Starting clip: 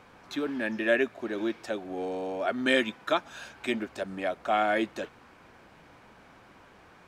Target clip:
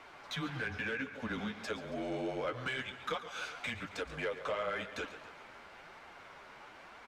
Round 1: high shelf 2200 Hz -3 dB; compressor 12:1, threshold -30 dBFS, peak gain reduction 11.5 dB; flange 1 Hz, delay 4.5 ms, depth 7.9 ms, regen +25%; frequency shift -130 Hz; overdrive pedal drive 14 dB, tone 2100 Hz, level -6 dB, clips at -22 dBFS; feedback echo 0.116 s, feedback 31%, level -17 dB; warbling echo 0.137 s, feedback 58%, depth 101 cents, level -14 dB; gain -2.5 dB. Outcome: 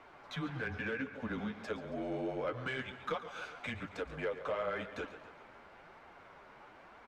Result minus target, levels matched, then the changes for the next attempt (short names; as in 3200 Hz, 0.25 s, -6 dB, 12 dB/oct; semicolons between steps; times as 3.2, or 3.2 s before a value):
4000 Hz band -4.5 dB
change: high shelf 2200 Hz +8.5 dB